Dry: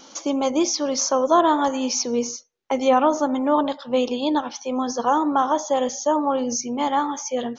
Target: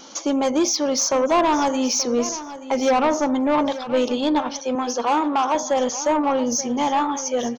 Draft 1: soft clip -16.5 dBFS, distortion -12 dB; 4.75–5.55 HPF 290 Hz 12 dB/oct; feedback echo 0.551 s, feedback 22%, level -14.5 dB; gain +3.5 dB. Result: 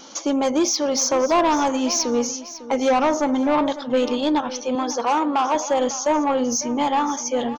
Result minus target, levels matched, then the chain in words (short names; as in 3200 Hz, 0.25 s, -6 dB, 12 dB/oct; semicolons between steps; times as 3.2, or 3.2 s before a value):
echo 0.328 s early
soft clip -16.5 dBFS, distortion -12 dB; 4.75–5.55 HPF 290 Hz 12 dB/oct; feedback echo 0.879 s, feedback 22%, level -14.5 dB; gain +3.5 dB